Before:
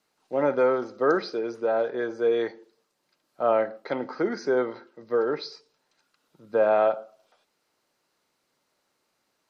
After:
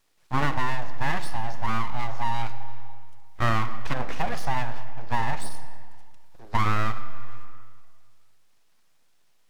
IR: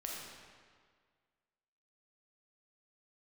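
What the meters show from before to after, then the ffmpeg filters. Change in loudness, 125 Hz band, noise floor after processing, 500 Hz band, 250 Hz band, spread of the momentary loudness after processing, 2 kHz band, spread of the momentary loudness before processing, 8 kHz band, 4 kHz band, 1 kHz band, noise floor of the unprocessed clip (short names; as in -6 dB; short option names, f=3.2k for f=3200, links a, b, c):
-4.0 dB, +17.0 dB, -59 dBFS, -16.0 dB, -4.0 dB, 18 LU, +3.0 dB, 10 LU, n/a, +3.5 dB, +3.0 dB, -75 dBFS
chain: -filter_complex "[0:a]aeval=exprs='abs(val(0))':c=same,asplit=2[a][b];[1:a]atrim=start_sample=2205[c];[b][c]afir=irnorm=-1:irlink=0,volume=-10.5dB[d];[a][d]amix=inputs=2:normalize=0,acompressor=threshold=-21dB:ratio=6,volume=5dB"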